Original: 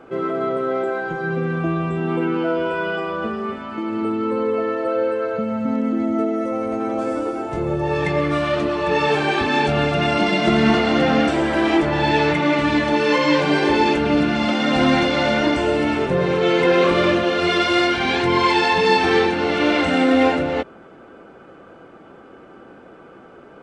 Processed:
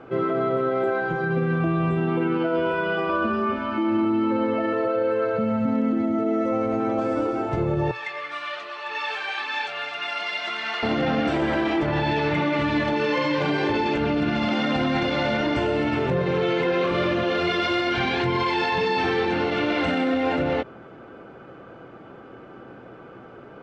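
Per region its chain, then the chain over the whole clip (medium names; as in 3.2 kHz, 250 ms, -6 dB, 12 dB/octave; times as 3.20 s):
3.09–4.73 s: low-pass 7.4 kHz 24 dB/octave + comb 3.3 ms, depth 98%
7.91–10.83 s: high-pass 1.2 kHz + flange 1.9 Hz, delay 0.7 ms, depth 1.2 ms, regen -65%
whole clip: low-pass 4.9 kHz 12 dB/octave; peaking EQ 120 Hz +10 dB 0.36 oct; peak limiter -15 dBFS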